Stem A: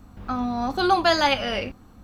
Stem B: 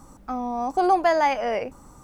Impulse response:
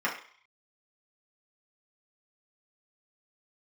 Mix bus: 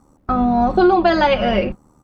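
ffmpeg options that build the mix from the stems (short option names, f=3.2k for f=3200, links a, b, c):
-filter_complex "[0:a]lowpass=3.2k,lowshelf=f=110:g=8.5,aecho=1:1:5.5:0.65,volume=2dB[a];[1:a]tremolo=f=76:d=0.75,volume=-1,adelay=0.3,volume=-8dB,asplit=2[b][c];[c]apad=whole_len=90075[d];[a][d]sidechaingate=range=-33dB:threshold=-48dB:ratio=16:detection=peak[e];[e][b]amix=inputs=2:normalize=0,equalizer=f=270:w=0.32:g=8.5,acompressor=threshold=-10dB:ratio=6"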